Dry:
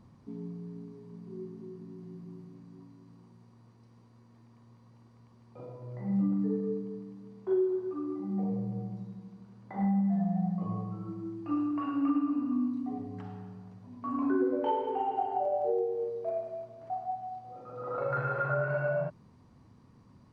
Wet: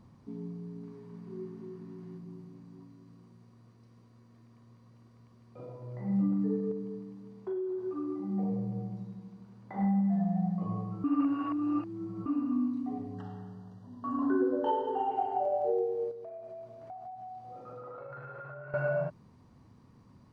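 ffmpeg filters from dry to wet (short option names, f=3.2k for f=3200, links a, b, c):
-filter_complex "[0:a]asettb=1/sr,asplit=3[a][b][c];[a]atrim=end=0.834[d];[b]atrim=start=0.83:end=2.18,asetpts=PTS-STARTPTS,afade=t=in:d=0.004:c=qsin,afade=t=out:st=1.346:d=0.004:c=qsin,equalizer=f=1.6k:w=0.72:g=6[e];[c]atrim=start=2.176[f];[d][e]acrossfade=d=0.004:c1=hsin:c2=qsin[g];[g][f]acrossfade=d=0.004:c1=qsin:c2=hsin,asettb=1/sr,asplit=3[h][i][j];[h]atrim=end=2.854[k];[i]atrim=start=2.85:end=5.69,asetpts=PTS-STARTPTS,afade=t=in:d=0.004:c=qsin,afade=t=out:st=2.836:d=0.004:c=qsin,bandreject=f=870:w=5.3[l];[j]atrim=start=5.686[m];[k][l]acrossfade=d=0.004:c1=hsin:c2=qsin[n];[n][m]acrossfade=d=0.004:c1=qsin:c2=hsin,asettb=1/sr,asplit=3[o][p][q];[o]atrim=end=6.714[r];[p]atrim=start=6.71:end=7.86,asetpts=PTS-STARTPTS,afade=t=in:d=0.004:c=qsin,afade=t=out:st=1.146:d=0.004:c=qsin,acompressor=threshold=-32dB:ratio=6:attack=3.2:release=140:knee=1:detection=peak[s];[q]atrim=start=7.856[t];[r][s]acrossfade=d=0.004:c1=hsin:c2=qsin[u];[u][t]acrossfade=d=0.004:c1=qsin:c2=hsin,asettb=1/sr,asplit=3[v][w][x];[v]atrim=end=13.144[y];[w]atrim=start=13.14:end=15.1,asetpts=PTS-STARTPTS,afade=t=in:d=0.004:c=qsin,afade=t=out:st=1.956:d=0.004:c=qsin,asuperstop=centerf=2300:order=20:qfactor=2.9[z];[x]atrim=start=15.096[aa];[y][z]acrossfade=d=0.004:c1=hsin:c2=qsin[ab];[ab][aa]acrossfade=d=0.004:c1=qsin:c2=hsin,asettb=1/sr,asplit=3[ac][ad][ae];[ac]atrim=end=16.114[af];[ad]atrim=start=16.11:end=18.74,asetpts=PTS-STARTPTS,afade=t=in:d=0.004:c=qsin,afade=t=out:st=2.626:d=0.004:c=qsin,acompressor=threshold=-41dB:ratio=12:attack=3.2:release=140:knee=1:detection=peak[ag];[ae]atrim=start=18.736[ah];[af][ag]acrossfade=d=0.004:c1=hsin:c2=qsin[ai];[ai][ah]acrossfade=d=0.004:c1=qsin:c2=hsin,asplit=3[aj][ak][al];[aj]atrim=end=11.042[am];[ak]atrim=start=11.038:end=12.262,asetpts=PTS-STARTPTS,areverse[an];[al]atrim=start=12.258[ao];[am][an]acrossfade=d=0.004:c1=hsin:c2=hsin[ap];[ap][ao]acrossfade=d=0.004:c1=hsin:c2=hsin"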